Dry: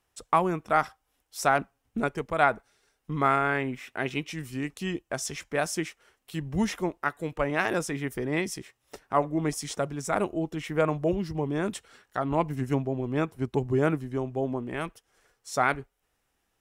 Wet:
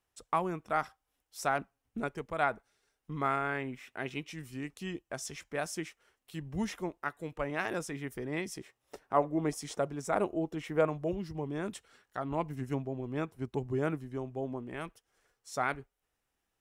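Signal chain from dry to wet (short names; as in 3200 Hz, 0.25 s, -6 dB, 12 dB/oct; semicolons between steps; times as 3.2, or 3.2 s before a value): 8.54–10.87 bell 540 Hz +5.5 dB 2.5 oct; gain -7.5 dB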